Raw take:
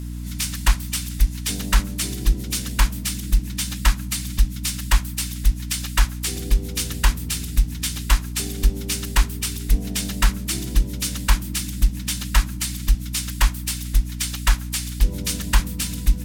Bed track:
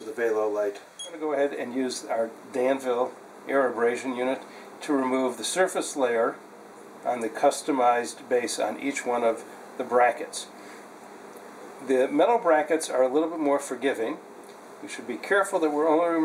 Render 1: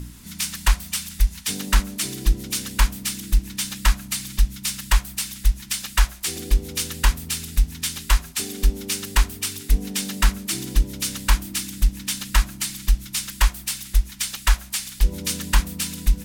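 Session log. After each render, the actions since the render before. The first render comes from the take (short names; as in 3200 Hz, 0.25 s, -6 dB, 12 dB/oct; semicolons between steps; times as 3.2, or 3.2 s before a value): de-hum 60 Hz, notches 12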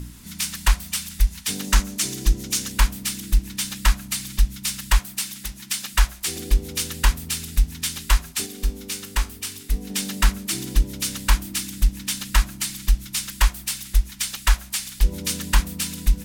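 1.64–2.72 bell 6400 Hz +5.5 dB 0.58 oct; 4.99–5.94 HPF 130 Hz; 8.46–9.9 resonator 62 Hz, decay 0.27 s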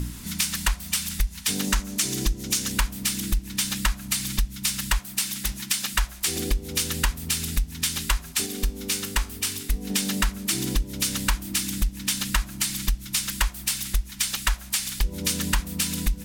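in parallel at -1 dB: limiter -11 dBFS, peak gain reduction 7 dB; on the sum: compressor 5:1, threshold -21 dBFS, peak gain reduction 12.5 dB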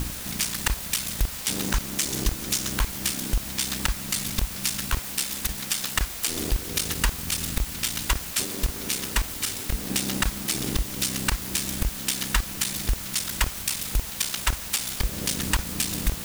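cycle switcher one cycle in 3, muted; requantised 6-bit, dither triangular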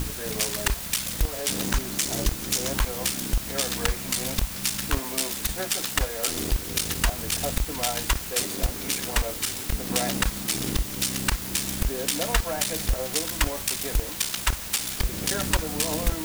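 add bed track -11 dB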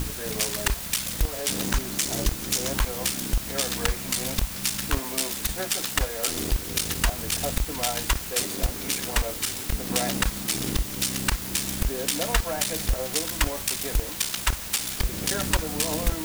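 nothing audible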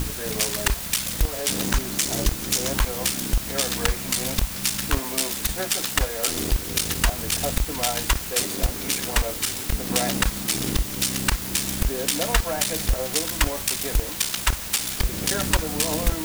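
gain +2.5 dB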